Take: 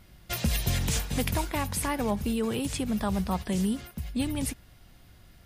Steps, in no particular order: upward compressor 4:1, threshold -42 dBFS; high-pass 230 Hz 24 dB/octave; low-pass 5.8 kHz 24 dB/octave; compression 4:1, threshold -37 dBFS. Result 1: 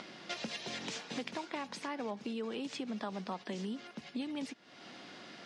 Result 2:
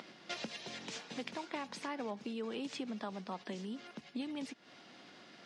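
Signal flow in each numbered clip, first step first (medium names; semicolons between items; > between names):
high-pass > compression > upward compressor > low-pass; compression > low-pass > upward compressor > high-pass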